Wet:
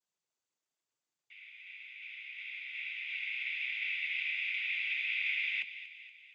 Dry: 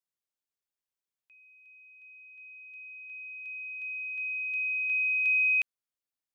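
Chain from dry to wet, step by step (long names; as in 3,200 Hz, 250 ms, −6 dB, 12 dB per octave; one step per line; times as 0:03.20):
downward compressor 6 to 1, threshold −40 dBFS, peak gain reduction 14.5 dB
cochlear-implant simulation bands 16
delay with a high-pass on its return 236 ms, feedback 53%, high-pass 1,900 Hz, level −11 dB
level +5 dB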